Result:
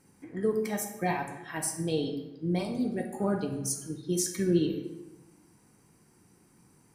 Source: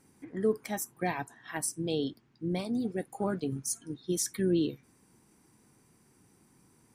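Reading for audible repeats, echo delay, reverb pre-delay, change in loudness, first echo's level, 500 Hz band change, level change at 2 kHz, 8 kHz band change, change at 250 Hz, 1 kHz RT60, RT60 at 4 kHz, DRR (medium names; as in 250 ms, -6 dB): no echo, no echo, 3 ms, +2.0 dB, no echo, +2.0 dB, +1.5 dB, +1.5 dB, +2.0 dB, 1.0 s, 0.65 s, 2.5 dB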